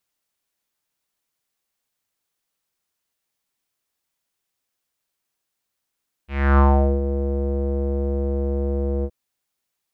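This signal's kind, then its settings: synth note square C#2 12 dB/octave, low-pass 480 Hz, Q 3.7, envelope 2.5 oct, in 0.65 s, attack 304 ms, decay 0.42 s, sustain -10.5 dB, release 0.06 s, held 2.76 s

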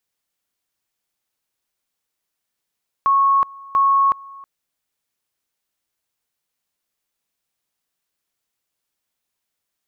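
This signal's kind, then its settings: two-level tone 1.1 kHz -12 dBFS, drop 23.5 dB, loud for 0.37 s, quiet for 0.32 s, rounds 2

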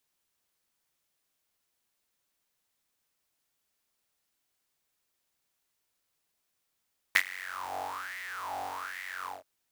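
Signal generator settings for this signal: synth patch with filter wobble F#2, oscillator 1 triangle, oscillator 2 saw, oscillator 2 level -14.5 dB, filter highpass, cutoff 950 Hz, Q 9, filter envelope 1 oct, filter decay 0.15 s, filter sustain 35%, attack 2.5 ms, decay 0.07 s, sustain -20.5 dB, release 0.18 s, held 2.10 s, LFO 1.2 Hz, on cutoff 0.7 oct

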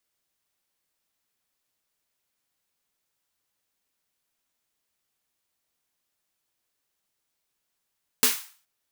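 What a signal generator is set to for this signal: snare drum length 0.42 s, tones 250 Hz, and 440 Hz, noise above 950 Hz, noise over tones 11 dB, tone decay 0.20 s, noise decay 0.42 s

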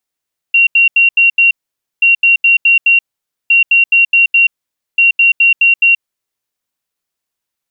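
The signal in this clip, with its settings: beep pattern sine 2.75 kHz, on 0.13 s, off 0.08 s, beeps 5, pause 0.51 s, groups 4, -5 dBFS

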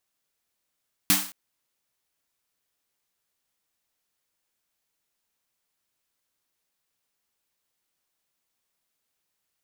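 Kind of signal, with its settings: snare drum length 0.22 s, tones 190 Hz, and 290 Hz, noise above 690 Hz, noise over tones 8.5 dB, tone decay 0.33 s, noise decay 0.44 s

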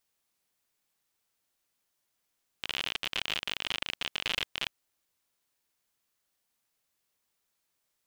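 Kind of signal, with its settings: random clicks 57 per s -15 dBFS 2.10 s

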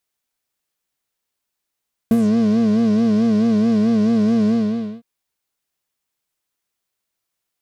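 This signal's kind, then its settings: synth patch with vibrato A3, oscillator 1 triangle, oscillator 2 sine, interval +12 st, oscillator 2 level -14 dB, sub -22.5 dB, noise -29.5 dB, filter lowpass, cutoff 3.8 kHz, Q 2.1, filter envelope 2 oct, filter decay 0.18 s, filter sustain 20%, attack 2 ms, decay 0.05 s, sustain -4.5 dB, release 0.53 s, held 2.38 s, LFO 4.6 Hz, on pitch 99 cents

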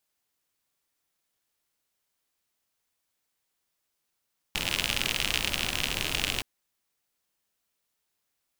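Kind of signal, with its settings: rain from filtered ticks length 1.87 s, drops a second 67, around 2.8 kHz, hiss -4 dB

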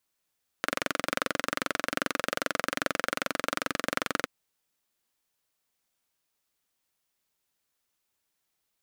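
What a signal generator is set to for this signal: single-cylinder engine model, steady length 3.62 s, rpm 2700, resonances 290/540/1300 Hz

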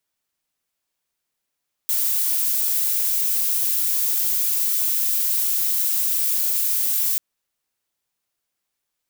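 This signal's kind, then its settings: noise violet, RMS -21 dBFS 5.29 s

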